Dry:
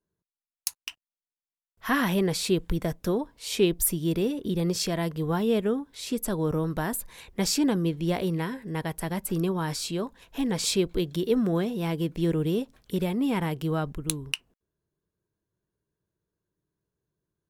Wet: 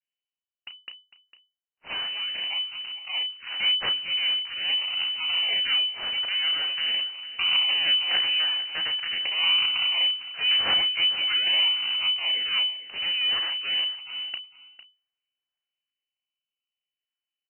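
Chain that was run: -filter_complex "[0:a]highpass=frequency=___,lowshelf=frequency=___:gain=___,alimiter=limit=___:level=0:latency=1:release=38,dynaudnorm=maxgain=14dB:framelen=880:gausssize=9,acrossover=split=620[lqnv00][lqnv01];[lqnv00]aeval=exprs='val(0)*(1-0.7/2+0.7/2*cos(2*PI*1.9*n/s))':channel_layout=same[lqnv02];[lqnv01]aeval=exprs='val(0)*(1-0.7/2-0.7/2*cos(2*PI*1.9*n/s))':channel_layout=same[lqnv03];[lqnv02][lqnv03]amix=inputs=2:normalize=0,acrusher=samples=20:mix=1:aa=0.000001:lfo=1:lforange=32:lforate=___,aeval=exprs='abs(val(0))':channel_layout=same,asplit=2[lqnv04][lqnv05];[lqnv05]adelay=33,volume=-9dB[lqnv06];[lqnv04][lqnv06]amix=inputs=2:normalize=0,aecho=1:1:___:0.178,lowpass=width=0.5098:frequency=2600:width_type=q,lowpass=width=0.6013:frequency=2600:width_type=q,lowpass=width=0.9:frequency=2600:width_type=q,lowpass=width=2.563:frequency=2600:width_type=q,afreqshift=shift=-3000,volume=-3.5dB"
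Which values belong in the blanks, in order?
120, 250, -8.5, -10dB, 0.44, 453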